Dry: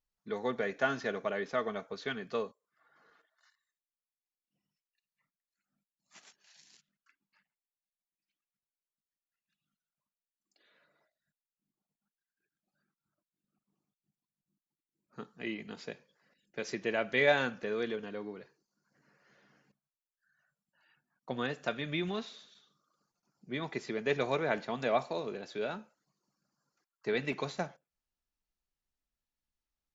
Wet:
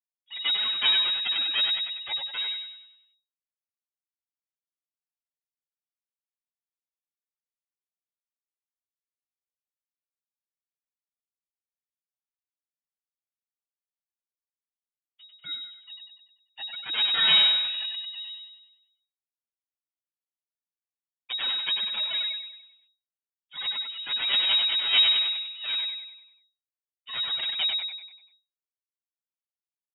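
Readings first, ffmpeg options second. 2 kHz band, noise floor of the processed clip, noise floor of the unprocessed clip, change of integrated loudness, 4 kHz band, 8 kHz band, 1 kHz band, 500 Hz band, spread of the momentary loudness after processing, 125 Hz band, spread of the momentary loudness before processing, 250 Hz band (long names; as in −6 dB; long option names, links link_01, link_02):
+3.5 dB, below −85 dBFS, below −85 dBFS, +11.0 dB, +24.0 dB, can't be measured, −3.0 dB, −18.5 dB, 20 LU, below −10 dB, 15 LU, below −15 dB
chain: -filter_complex "[0:a]afftfilt=real='re*gte(hypot(re,im),0.0501)':imag='im*gte(hypot(re,im),0.0501)':win_size=1024:overlap=0.75,asplit=2[link_01][link_02];[link_02]acompressor=threshold=-44dB:ratio=8,volume=2dB[link_03];[link_01][link_03]amix=inputs=2:normalize=0,highpass=frequency=810:width_type=q:width=6.1,asplit=2[link_04][link_05];[link_05]adelay=97,lowpass=frequency=1500:poles=1,volume=-3dB,asplit=2[link_06][link_07];[link_07]adelay=97,lowpass=frequency=1500:poles=1,volume=0.53,asplit=2[link_08][link_09];[link_09]adelay=97,lowpass=frequency=1500:poles=1,volume=0.53,asplit=2[link_10][link_11];[link_11]adelay=97,lowpass=frequency=1500:poles=1,volume=0.53,asplit=2[link_12][link_13];[link_13]adelay=97,lowpass=frequency=1500:poles=1,volume=0.53,asplit=2[link_14][link_15];[link_15]adelay=97,lowpass=frequency=1500:poles=1,volume=0.53,asplit=2[link_16][link_17];[link_17]adelay=97,lowpass=frequency=1500:poles=1,volume=0.53[link_18];[link_06][link_08][link_10][link_12][link_14][link_16][link_18]amix=inputs=7:normalize=0[link_19];[link_04][link_19]amix=inputs=2:normalize=0,aeval=exprs='clip(val(0),-1,0.0237)':channel_layout=same,crystalizer=i=4.5:c=0,aeval=exprs='abs(val(0))':channel_layout=same,flanger=delay=4.3:depth=3.9:regen=33:speed=0.17:shape=sinusoidal,acontrast=25,lowpass=frequency=3200:width_type=q:width=0.5098,lowpass=frequency=3200:width_type=q:width=0.6013,lowpass=frequency=3200:width_type=q:width=0.9,lowpass=frequency=3200:width_type=q:width=2.563,afreqshift=-3800"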